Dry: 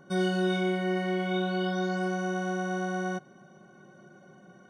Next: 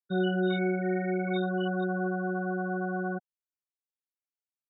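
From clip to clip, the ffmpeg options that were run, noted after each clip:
-af "afftfilt=real='re*gte(hypot(re,im),0.0562)':imag='im*gte(hypot(re,im),0.0562)':win_size=1024:overlap=0.75"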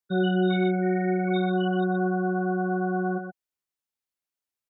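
-af "aecho=1:1:123:0.447,volume=1.5"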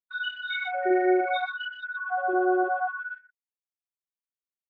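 -af "anlmdn=39.8,afftfilt=real='re*gte(b*sr/1024,290*pow(1500/290,0.5+0.5*sin(2*PI*0.7*pts/sr)))':imag='im*gte(b*sr/1024,290*pow(1500/290,0.5+0.5*sin(2*PI*0.7*pts/sr)))':win_size=1024:overlap=0.75,volume=2"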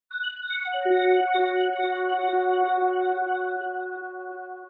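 -af "aecho=1:1:490|931|1328|1685|2007:0.631|0.398|0.251|0.158|0.1,volume=1.19"

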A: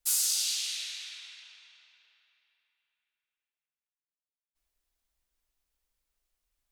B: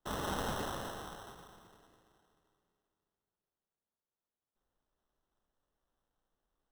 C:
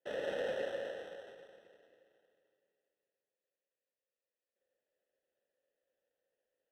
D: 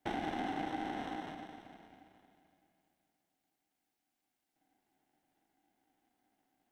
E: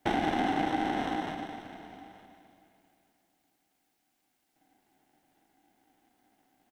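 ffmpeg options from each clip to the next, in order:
-filter_complex "[0:a]acrossover=split=5900[s0][s1];[s1]acompressor=threshold=0.0126:ratio=4:attack=1:release=60[s2];[s0][s2]amix=inputs=2:normalize=0,acrusher=samples=19:mix=1:aa=0.000001,volume=0.668"
-filter_complex "[0:a]asplit=3[s0][s1][s2];[s0]bandpass=f=530:t=q:w=8,volume=1[s3];[s1]bandpass=f=1840:t=q:w=8,volume=0.501[s4];[s2]bandpass=f=2480:t=q:w=8,volume=0.355[s5];[s3][s4][s5]amix=inputs=3:normalize=0,volume=3.76"
-af "acompressor=threshold=0.00708:ratio=6,aeval=exprs='val(0)*sin(2*PI*240*n/s)':c=same,volume=3.55"
-af "aecho=1:1:914:0.0891,volume=2.82"

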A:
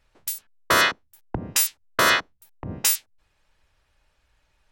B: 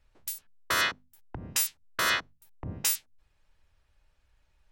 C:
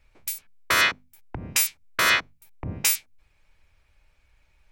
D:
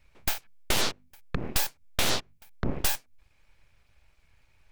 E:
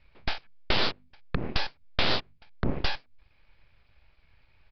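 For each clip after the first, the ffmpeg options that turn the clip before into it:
-filter_complex "[0:a]lowshelf=f=160:g=8.5,bandreject=f=50:t=h:w=6,bandreject=f=100:t=h:w=6,bandreject=f=150:t=h:w=6,bandreject=f=200:t=h:w=6,bandreject=f=250:t=h:w=6,acrossover=split=1200[s0][s1];[s0]alimiter=limit=0.0891:level=0:latency=1:release=252[s2];[s2][s1]amix=inputs=2:normalize=0,volume=0.473"
-af "equalizer=f=2300:w=6.8:g=11,volume=1.78"
-af "aeval=exprs='abs(val(0))':c=same,acompressor=threshold=0.0447:ratio=12,aeval=exprs='0.168*(cos(1*acos(clip(val(0)/0.168,-1,1)))-cos(1*PI/2))+0.0531*(cos(6*acos(clip(val(0)/0.168,-1,1)))-cos(6*PI/2))':c=same"
-af "aresample=11025,aresample=44100,volume=1.19"

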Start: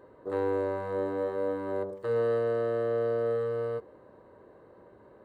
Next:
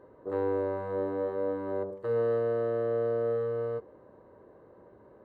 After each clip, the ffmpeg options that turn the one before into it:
-af "highshelf=f=2400:g=-11"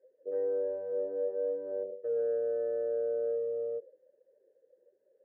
-filter_complex "[0:a]asoftclip=type=tanh:threshold=0.075,afftdn=nr=17:nf=-40,asplit=3[s0][s1][s2];[s0]bandpass=f=530:t=q:w=8,volume=1[s3];[s1]bandpass=f=1840:t=q:w=8,volume=0.501[s4];[s2]bandpass=f=2480:t=q:w=8,volume=0.355[s5];[s3][s4][s5]amix=inputs=3:normalize=0,volume=1.88"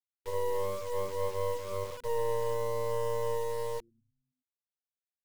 -filter_complex "[0:a]afftfilt=real='re*gte(hypot(re,im),0.0316)':imag='im*gte(hypot(re,im),0.0316)':win_size=1024:overlap=0.75,acrossover=split=230[s0][s1];[s0]asplit=7[s2][s3][s4][s5][s6][s7][s8];[s3]adelay=104,afreqshift=-120,volume=0.266[s9];[s4]adelay=208,afreqshift=-240,volume=0.151[s10];[s5]adelay=312,afreqshift=-360,volume=0.0861[s11];[s6]adelay=416,afreqshift=-480,volume=0.0495[s12];[s7]adelay=520,afreqshift=-600,volume=0.0282[s13];[s8]adelay=624,afreqshift=-720,volume=0.016[s14];[s2][s9][s10][s11][s12][s13][s14]amix=inputs=7:normalize=0[s15];[s1]acrusher=bits=5:dc=4:mix=0:aa=0.000001[s16];[s15][s16]amix=inputs=2:normalize=0,volume=1.58"

